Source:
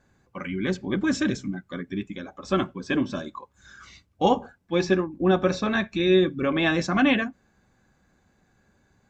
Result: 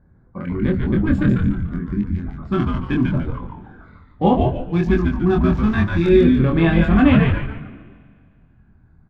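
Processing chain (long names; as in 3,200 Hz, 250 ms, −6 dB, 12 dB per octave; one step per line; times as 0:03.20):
adaptive Wiener filter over 15 samples
bass and treble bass +12 dB, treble −11 dB
auto-filter notch square 0.33 Hz 540–5,900 Hz
double-tracking delay 24 ms −3 dB
echo with shifted repeats 145 ms, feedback 37%, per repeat −120 Hz, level −3 dB
spring reverb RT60 2.1 s, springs 39/45 ms, chirp 25 ms, DRR 17 dB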